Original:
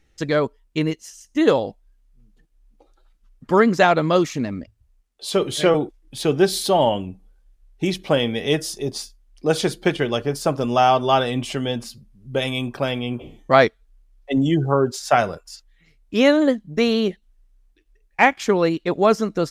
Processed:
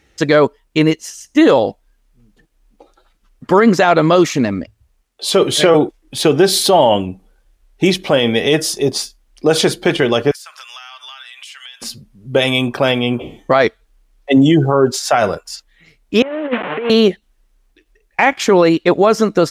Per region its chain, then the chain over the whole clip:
10.31–11.82 HPF 1500 Hz 24 dB/oct + compressor 16:1, threshold -42 dBFS
16.22–16.9 delta modulation 16 kbps, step -29.5 dBFS + HPF 410 Hz + negative-ratio compressor -28 dBFS, ratio -0.5
whole clip: HPF 46 Hz; tone controls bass -5 dB, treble -2 dB; maximiser +12.5 dB; gain -1 dB

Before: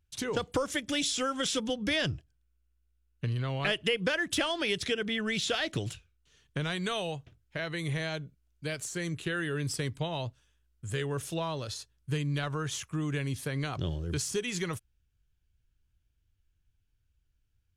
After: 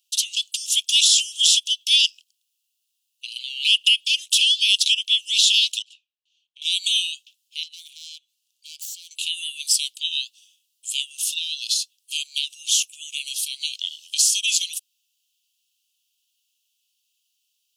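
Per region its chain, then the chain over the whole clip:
5.82–6.62 band-pass 530 Hz, Q 1 + tilt -2 dB/oct
7.63–9.11 self-modulated delay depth 0.1 ms + high shelf 9100 Hz -5 dB + compressor 4:1, threshold -48 dBFS
whole clip: steep high-pass 2700 Hz 96 dB/oct; maximiser +22.5 dB; gain -4 dB

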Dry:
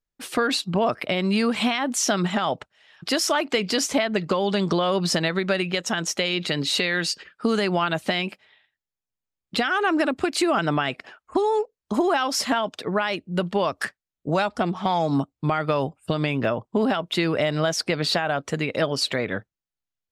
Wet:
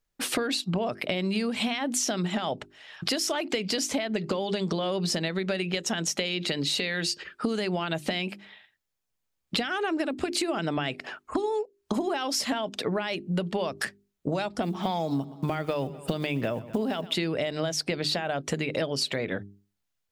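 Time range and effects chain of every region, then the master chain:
14.62–17.15 block floating point 7-bit + feedback echo 0.122 s, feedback 42%, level -21.5 dB
whole clip: notches 50/100/150/200/250/300/350/400 Hz; dynamic EQ 1200 Hz, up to -7 dB, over -39 dBFS, Q 1.3; compressor 6:1, threshold -33 dBFS; gain +7 dB

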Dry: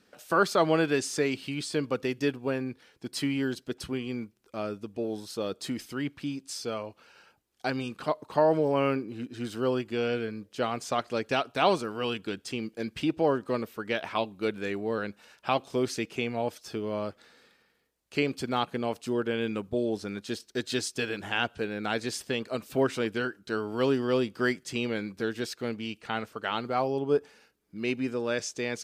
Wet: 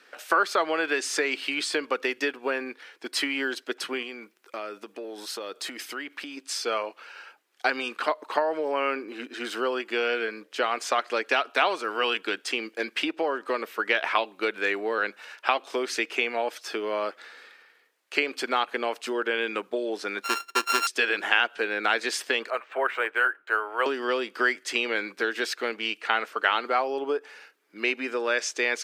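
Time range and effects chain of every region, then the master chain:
4.02–6.37 high shelf 9600 Hz +5 dB + compressor 10:1, threshold -36 dBFS
20.23–20.87 sample sorter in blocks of 32 samples + bell 5800 Hz +6 dB 0.99 oct
22.5–23.86 three-band isolator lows -23 dB, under 500 Hz, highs -23 dB, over 2700 Hz + decimation joined by straight lines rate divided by 4×
whole clip: compressor 10:1, threshold -28 dBFS; HPF 310 Hz 24 dB/oct; bell 1800 Hz +10.5 dB 2.1 oct; gain +3.5 dB

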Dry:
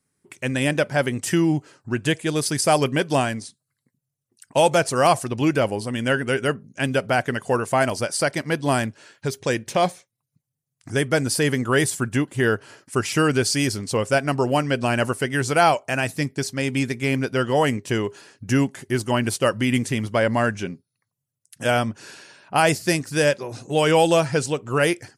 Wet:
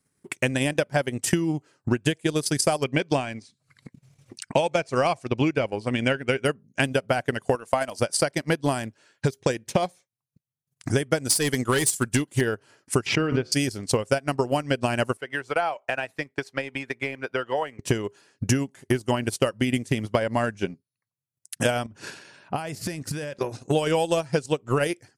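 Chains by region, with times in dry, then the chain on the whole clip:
2.84–6.45 LPF 6100 Hz + bell 2300 Hz +8 dB 0.21 oct + upward compressor, threshold -35 dBFS
7.55–8 HPF 290 Hz 6 dB/oct + notch 390 Hz, Q 5.6
11.25–12.41 de-esser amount 25% + high shelf 2700 Hz +9.5 dB + hard clip -13.5 dBFS
13.06–13.52 air absorption 250 m + de-hum 73.24 Hz, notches 40 + backwards sustainer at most 44 dB/s
15.17–17.79 compressor 2:1, threshold -24 dBFS + three-band isolator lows -15 dB, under 480 Hz, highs -15 dB, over 3100 Hz
21.86–23.39 tone controls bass +4 dB, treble -3 dB + transient shaper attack -5 dB, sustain +7 dB + compressor 10:1, threshold -29 dBFS
whole clip: transient shaper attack +10 dB, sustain -11 dB; dynamic EQ 1600 Hz, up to -3 dB, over -31 dBFS, Q 0.79; compressor, threshold -19 dBFS

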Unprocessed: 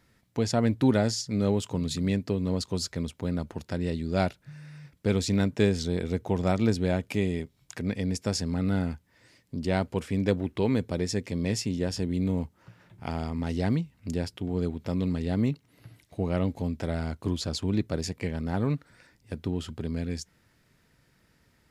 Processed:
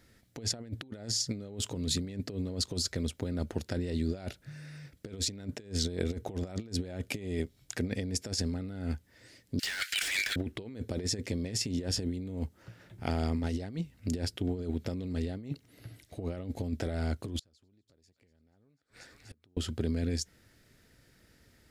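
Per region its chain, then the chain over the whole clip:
9.59–10.36 steep high-pass 1500 Hz 72 dB/oct + overdrive pedal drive 34 dB, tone 6700 Hz, clips at -20 dBFS
17.39–19.57 thin delay 0.243 s, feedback 64%, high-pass 1600 Hz, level -14.5 dB + compressor 12:1, threshold -35 dBFS + flipped gate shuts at -38 dBFS, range -29 dB
whole clip: fifteen-band EQ 160 Hz -6 dB, 1000 Hz -9 dB, 2500 Hz -3 dB; negative-ratio compressor -33 dBFS, ratio -0.5

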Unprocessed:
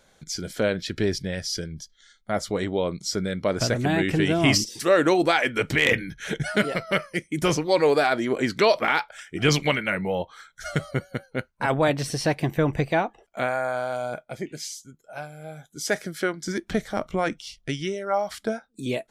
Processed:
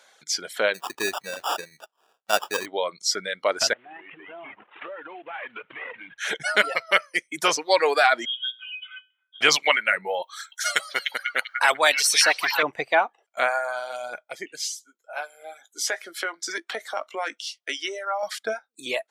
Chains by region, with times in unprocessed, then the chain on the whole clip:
0.74–2.66 sample-rate reducer 2100 Hz + notch 2100 Hz, Q 6.2
3.73–6.18 CVSD 16 kbps + compressor 12:1, threshold -34 dBFS
8.25–9.41 octave resonator B, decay 0.37 s + inverted band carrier 3500 Hz
10.22–12.63 tilt +3.5 dB/oct + delay with a stepping band-pass 0.299 s, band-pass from 2900 Hz, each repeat -0.7 oct, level -0.5 dB
14.61–18.23 HPF 280 Hz 24 dB/oct + compressor 5:1, threshold -26 dBFS + doubler 18 ms -10 dB
whole clip: reverb removal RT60 1.5 s; HPF 750 Hz 12 dB/oct; high shelf 9100 Hz -6 dB; gain +7 dB

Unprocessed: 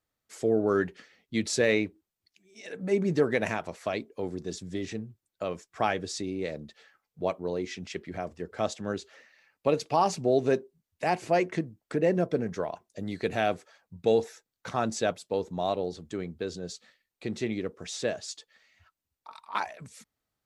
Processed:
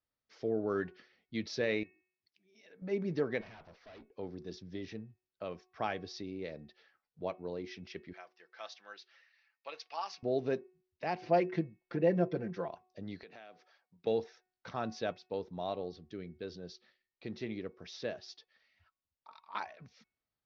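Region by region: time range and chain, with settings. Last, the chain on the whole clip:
1.83–2.82 HPF 92 Hz + compressor 2:1, threshold -55 dBFS
3.41–4.11 tube stage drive 42 dB, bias 0.55 + air absorption 56 m
8.13–10.23 HPF 1200 Hz + comb 5.9 ms, depth 39%
11.21–12.68 high shelf 6300 Hz -9 dB + comb 5.8 ms, depth 96%
13.23–14.07 HPF 130 Hz 24 dB/oct + low shelf 330 Hz -11 dB + compressor, threshold -41 dBFS
15.92–16.43 LPF 9600 Hz + bell 930 Hz -14.5 dB 0.7 oct
whole clip: steep low-pass 5700 Hz 72 dB/oct; de-hum 368.4 Hz, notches 7; gain -8.5 dB

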